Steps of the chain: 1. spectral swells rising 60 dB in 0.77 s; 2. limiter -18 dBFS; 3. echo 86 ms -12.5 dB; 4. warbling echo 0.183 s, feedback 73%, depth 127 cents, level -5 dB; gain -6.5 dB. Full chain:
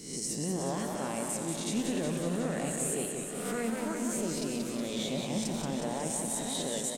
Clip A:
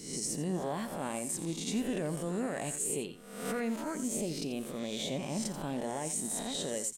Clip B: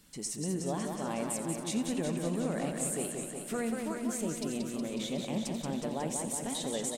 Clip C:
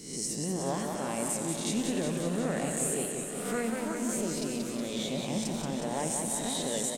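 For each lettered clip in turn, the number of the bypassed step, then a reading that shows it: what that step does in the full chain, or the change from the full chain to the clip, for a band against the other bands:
4, momentary loudness spread change +1 LU; 1, 4 kHz band -2.0 dB; 2, crest factor change +1.5 dB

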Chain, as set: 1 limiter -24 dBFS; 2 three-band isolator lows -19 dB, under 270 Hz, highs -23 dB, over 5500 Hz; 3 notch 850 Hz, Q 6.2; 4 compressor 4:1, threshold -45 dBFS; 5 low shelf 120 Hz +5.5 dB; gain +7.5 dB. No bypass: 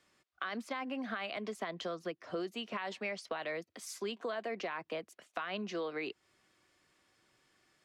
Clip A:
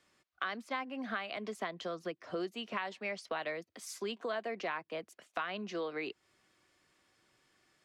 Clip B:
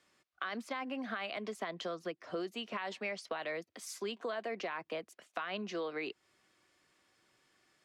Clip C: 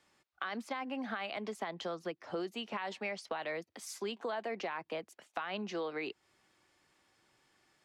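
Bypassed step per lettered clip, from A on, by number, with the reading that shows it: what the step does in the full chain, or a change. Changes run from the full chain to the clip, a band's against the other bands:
1, mean gain reduction 1.5 dB; 5, 125 Hz band -1.5 dB; 3, 1 kHz band +1.5 dB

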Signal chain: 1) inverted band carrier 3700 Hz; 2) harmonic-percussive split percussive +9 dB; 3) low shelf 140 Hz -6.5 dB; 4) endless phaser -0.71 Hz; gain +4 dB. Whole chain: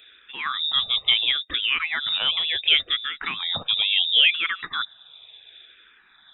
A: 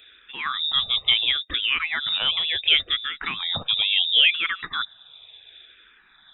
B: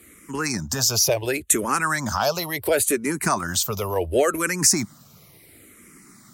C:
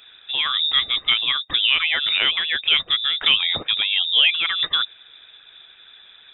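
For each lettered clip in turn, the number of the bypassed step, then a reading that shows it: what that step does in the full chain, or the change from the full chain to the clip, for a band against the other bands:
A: 3, 125 Hz band +3.5 dB; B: 1, 4 kHz band -31.0 dB; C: 4, crest factor change -2.0 dB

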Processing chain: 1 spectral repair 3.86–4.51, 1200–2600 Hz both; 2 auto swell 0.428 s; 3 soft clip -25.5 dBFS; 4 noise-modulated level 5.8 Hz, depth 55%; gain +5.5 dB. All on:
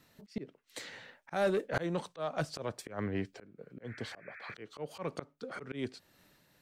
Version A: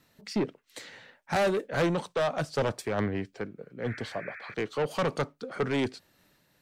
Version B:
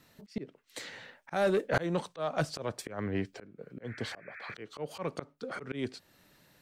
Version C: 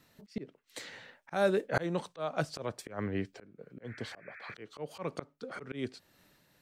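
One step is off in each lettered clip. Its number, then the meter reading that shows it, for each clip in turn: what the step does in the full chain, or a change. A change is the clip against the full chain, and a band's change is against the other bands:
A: 2, crest factor change -5.5 dB; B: 4, loudness change +3.0 LU; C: 3, distortion -16 dB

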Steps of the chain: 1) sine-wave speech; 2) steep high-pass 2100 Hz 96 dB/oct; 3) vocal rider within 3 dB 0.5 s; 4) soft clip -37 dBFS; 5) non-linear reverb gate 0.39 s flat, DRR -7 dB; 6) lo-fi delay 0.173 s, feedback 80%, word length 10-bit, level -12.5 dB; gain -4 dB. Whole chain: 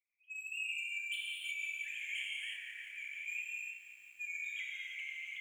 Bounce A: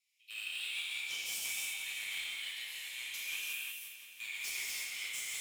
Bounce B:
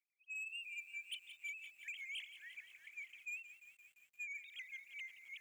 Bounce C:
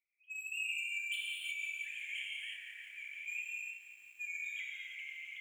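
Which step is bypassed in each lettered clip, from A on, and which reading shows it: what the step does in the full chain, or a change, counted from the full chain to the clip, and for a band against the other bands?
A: 1, momentary loudness spread change -1 LU; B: 5, momentary loudness spread change +2 LU; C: 3, momentary loudness spread change +2 LU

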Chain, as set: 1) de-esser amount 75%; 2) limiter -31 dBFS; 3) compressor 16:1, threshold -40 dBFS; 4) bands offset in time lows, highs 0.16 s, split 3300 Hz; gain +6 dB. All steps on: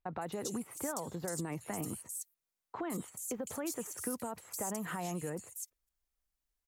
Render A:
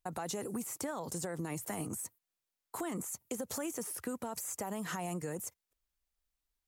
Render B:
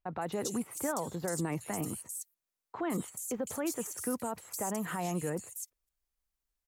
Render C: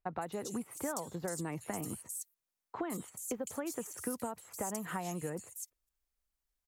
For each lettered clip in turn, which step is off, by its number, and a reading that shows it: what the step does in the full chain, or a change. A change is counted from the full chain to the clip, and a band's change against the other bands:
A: 4, echo-to-direct -16.5 dB to none; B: 3, mean gain reduction 3.0 dB; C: 2, mean gain reduction 2.5 dB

